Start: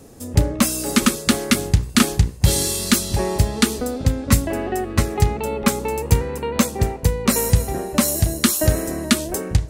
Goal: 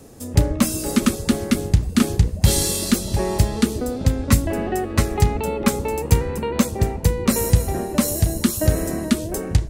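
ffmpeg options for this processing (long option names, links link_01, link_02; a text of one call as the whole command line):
ffmpeg -i in.wav -filter_complex "[0:a]acrossover=split=610[link_01][link_02];[link_01]asplit=8[link_03][link_04][link_05][link_06][link_07][link_08][link_09][link_10];[link_04]adelay=125,afreqshift=-140,volume=-14dB[link_11];[link_05]adelay=250,afreqshift=-280,volume=-18dB[link_12];[link_06]adelay=375,afreqshift=-420,volume=-22dB[link_13];[link_07]adelay=500,afreqshift=-560,volume=-26dB[link_14];[link_08]adelay=625,afreqshift=-700,volume=-30.1dB[link_15];[link_09]adelay=750,afreqshift=-840,volume=-34.1dB[link_16];[link_10]adelay=875,afreqshift=-980,volume=-38.1dB[link_17];[link_03][link_11][link_12][link_13][link_14][link_15][link_16][link_17]amix=inputs=8:normalize=0[link_18];[link_02]alimiter=limit=-10dB:level=0:latency=1:release=485[link_19];[link_18][link_19]amix=inputs=2:normalize=0" out.wav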